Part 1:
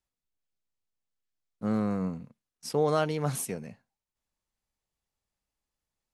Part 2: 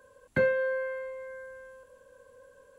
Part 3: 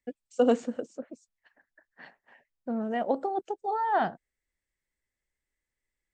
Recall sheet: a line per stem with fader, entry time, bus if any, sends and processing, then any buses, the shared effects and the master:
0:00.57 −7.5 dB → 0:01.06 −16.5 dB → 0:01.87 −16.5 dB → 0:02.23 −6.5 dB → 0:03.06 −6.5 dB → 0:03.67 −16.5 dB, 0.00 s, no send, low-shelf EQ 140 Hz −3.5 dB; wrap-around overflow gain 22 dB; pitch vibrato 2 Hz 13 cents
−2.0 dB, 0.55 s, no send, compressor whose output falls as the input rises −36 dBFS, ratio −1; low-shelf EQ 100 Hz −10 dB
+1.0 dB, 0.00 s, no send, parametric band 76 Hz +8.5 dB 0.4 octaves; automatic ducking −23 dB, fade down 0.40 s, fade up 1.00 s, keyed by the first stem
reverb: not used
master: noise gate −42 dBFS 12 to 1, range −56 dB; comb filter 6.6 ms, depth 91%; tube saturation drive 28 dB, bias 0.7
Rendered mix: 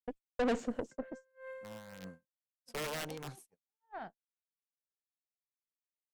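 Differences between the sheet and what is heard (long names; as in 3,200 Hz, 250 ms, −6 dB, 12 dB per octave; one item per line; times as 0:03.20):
stem 2 −2.0 dB → −9.5 dB
master: missing comb filter 6.6 ms, depth 91%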